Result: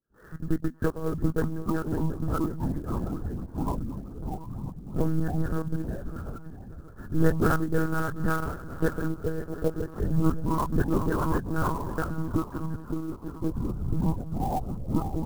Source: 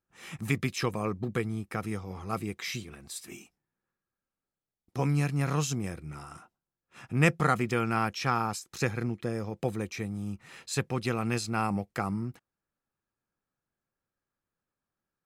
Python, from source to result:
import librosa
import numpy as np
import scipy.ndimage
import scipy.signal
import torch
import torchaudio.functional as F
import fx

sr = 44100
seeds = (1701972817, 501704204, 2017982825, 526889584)

p1 = fx.spec_delay(x, sr, highs='late', ms=115)
p2 = scipy.signal.sosfilt(scipy.signal.butter(16, 1700.0, 'lowpass', fs=sr, output='sos'), p1)
p3 = fx.band_shelf(p2, sr, hz=850.0, db=-8.5, octaves=1.1)
p4 = fx.hum_notches(p3, sr, base_hz=50, count=5)
p5 = fx.transient(p4, sr, attack_db=4, sustain_db=-11)
p6 = p5 + fx.echo_swing(p5, sr, ms=728, ratio=3, feedback_pct=38, wet_db=-14, dry=0)
p7 = fx.echo_pitch(p6, sr, ms=563, semitones=-5, count=3, db_per_echo=-3.0)
p8 = fx.lpc_monotone(p7, sr, seeds[0], pitch_hz=160.0, order=10)
p9 = fx.clock_jitter(p8, sr, seeds[1], jitter_ms=0.023)
y = p9 * librosa.db_to_amplitude(3.0)